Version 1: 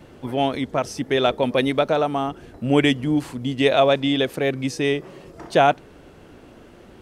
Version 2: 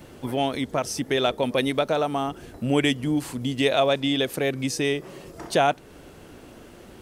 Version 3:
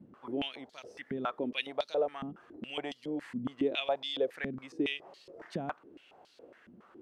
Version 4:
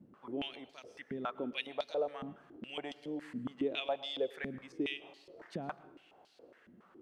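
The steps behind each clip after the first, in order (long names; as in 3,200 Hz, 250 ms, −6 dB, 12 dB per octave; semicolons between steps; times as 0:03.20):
high-shelf EQ 5,900 Hz +11 dB; in parallel at +2 dB: downward compressor, threshold −25 dBFS, peak gain reduction 13 dB; on the sum: level −7 dB
band-pass on a step sequencer 7.2 Hz 210–4,300 Hz
dense smooth reverb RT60 0.76 s, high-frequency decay 0.85×, pre-delay 95 ms, DRR 17 dB; level −4 dB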